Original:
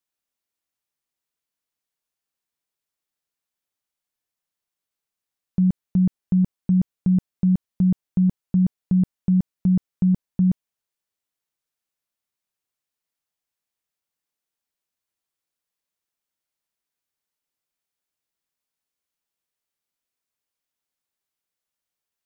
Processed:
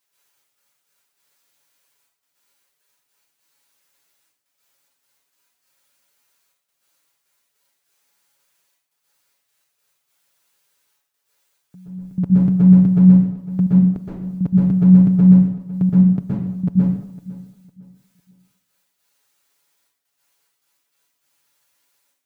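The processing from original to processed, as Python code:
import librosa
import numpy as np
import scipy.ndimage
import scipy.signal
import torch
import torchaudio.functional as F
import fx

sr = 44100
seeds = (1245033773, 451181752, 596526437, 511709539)

p1 = np.flip(x).copy()
p2 = scipy.signal.sosfilt(scipy.signal.butter(2, 53.0, 'highpass', fs=sr, output='sos'), p1)
p3 = p2 + 0.77 * np.pad(p2, (int(7.1 * sr / 1000.0), 0))[:len(p2)]
p4 = fx.over_compress(p3, sr, threshold_db=-21.0, ratio=-0.5)
p5 = p3 + F.gain(torch.from_numpy(p4), -2.0).numpy()
p6 = fx.low_shelf(p5, sr, hz=340.0, db=-7.0)
p7 = fx.step_gate(p6, sr, bpm=101, pattern='xx.x.x.xxxxxx..', floor_db=-24.0, edge_ms=4.5)
p8 = p7 + fx.echo_feedback(p7, sr, ms=505, feedback_pct=30, wet_db=-18, dry=0)
p9 = fx.rev_plate(p8, sr, seeds[0], rt60_s=0.76, hf_ratio=0.9, predelay_ms=110, drr_db=-7.5)
y = F.gain(torch.from_numpy(p9), 1.5).numpy()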